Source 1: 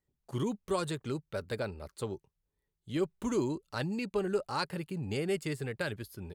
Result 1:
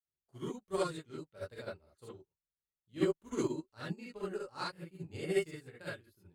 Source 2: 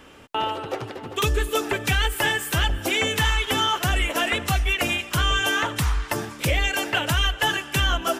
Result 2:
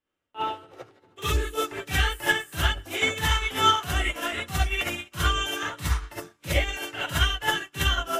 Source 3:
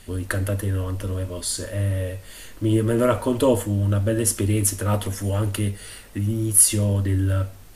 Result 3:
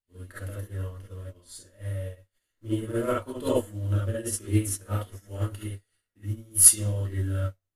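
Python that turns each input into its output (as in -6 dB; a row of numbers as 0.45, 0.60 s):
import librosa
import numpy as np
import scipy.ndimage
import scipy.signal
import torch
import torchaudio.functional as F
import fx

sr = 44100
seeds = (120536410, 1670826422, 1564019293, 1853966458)

y = fx.rev_gated(x, sr, seeds[0], gate_ms=90, shape='rising', drr_db=-6.0)
y = fx.upward_expand(y, sr, threshold_db=-36.0, expansion=2.5)
y = y * 10.0 ** (-4.5 / 20.0)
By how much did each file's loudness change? -4.0, -3.0, -3.5 LU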